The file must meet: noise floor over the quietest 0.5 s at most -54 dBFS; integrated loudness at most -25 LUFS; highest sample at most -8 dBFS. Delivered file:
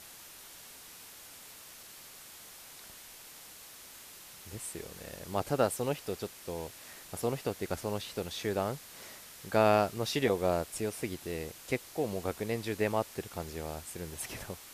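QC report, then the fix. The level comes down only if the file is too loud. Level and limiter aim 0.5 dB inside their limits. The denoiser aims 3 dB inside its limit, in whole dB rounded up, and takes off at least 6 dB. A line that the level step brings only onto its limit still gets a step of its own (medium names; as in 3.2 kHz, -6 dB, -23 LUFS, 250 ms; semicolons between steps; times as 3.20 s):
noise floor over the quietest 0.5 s -51 dBFS: fail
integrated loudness -34.0 LUFS: pass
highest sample -12.5 dBFS: pass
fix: noise reduction 6 dB, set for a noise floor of -51 dBFS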